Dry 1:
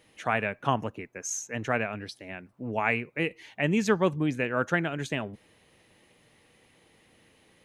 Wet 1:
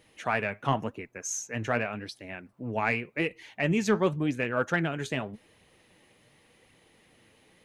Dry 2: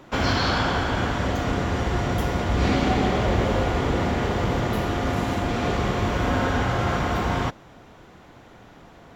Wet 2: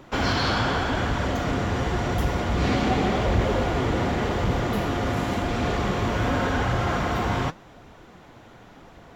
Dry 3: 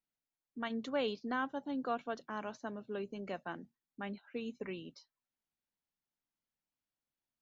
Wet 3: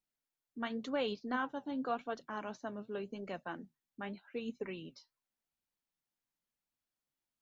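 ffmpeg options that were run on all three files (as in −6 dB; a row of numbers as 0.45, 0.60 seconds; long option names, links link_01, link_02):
-filter_complex "[0:a]flanger=delay=0.1:depth=9.8:regen=67:speed=0.89:shape=triangular,asplit=2[link_01][link_02];[link_02]asoftclip=type=tanh:threshold=-22.5dB,volume=-4dB[link_03];[link_01][link_03]amix=inputs=2:normalize=0"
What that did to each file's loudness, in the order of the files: −0.5, −1.0, 0.0 LU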